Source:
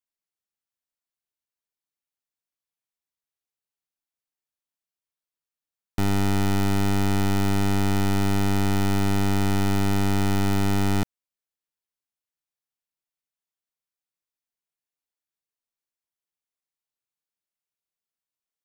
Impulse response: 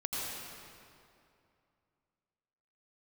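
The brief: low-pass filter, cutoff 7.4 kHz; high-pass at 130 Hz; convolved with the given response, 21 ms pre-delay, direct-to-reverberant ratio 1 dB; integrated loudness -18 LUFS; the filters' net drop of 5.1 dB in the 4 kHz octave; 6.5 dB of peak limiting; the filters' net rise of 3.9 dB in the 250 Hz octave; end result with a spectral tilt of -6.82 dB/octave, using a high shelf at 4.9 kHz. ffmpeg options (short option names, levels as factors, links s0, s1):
-filter_complex "[0:a]highpass=130,lowpass=7400,equalizer=f=250:t=o:g=6,equalizer=f=4000:t=o:g=-8.5,highshelf=f=4900:g=4,alimiter=limit=0.119:level=0:latency=1,asplit=2[s0][s1];[1:a]atrim=start_sample=2205,adelay=21[s2];[s1][s2]afir=irnorm=-1:irlink=0,volume=0.531[s3];[s0][s3]amix=inputs=2:normalize=0,volume=2.11"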